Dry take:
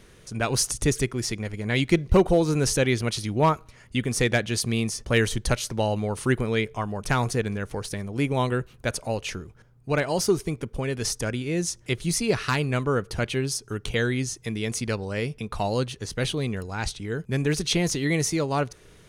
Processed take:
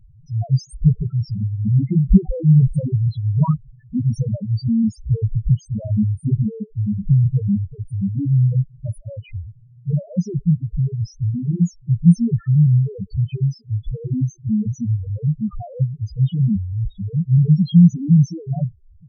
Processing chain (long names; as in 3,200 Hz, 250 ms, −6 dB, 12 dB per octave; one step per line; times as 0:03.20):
spectral peaks only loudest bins 1
low shelf with overshoot 270 Hz +11.5 dB, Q 3
level +3.5 dB